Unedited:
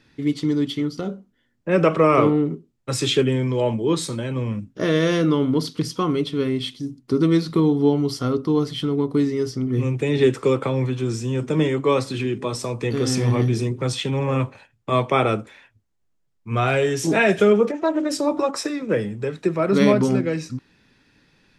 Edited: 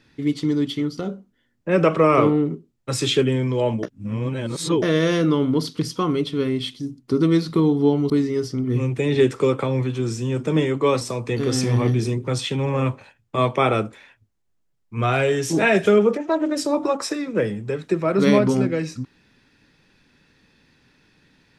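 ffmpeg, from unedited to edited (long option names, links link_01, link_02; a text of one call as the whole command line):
ffmpeg -i in.wav -filter_complex "[0:a]asplit=5[link_01][link_02][link_03][link_04][link_05];[link_01]atrim=end=3.832[link_06];[link_02]atrim=start=3.828:end=4.822,asetpts=PTS-STARTPTS,areverse[link_07];[link_03]atrim=start=4.818:end=8.102[link_08];[link_04]atrim=start=9.128:end=12.042[link_09];[link_05]atrim=start=12.548[link_10];[link_06][link_07]acrossfade=duration=0.004:curve1=hsin:curve2=hsin[link_11];[link_11][link_08]acrossfade=duration=0.004:curve1=hsin:curve2=hsin[link_12];[link_12][link_09]acrossfade=duration=0.004:curve1=hsin:curve2=hsin[link_13];[link_13][link_10]acrossfade=duration=0.004:curve1=hsin:curve2=hsin" out.wav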